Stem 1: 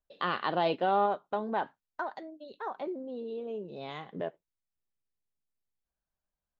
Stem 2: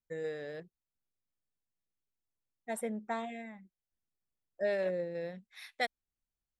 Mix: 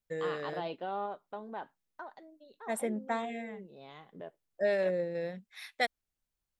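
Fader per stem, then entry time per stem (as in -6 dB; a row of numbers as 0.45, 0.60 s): -10.0, +3.0 dB; 0.00, 0.00 s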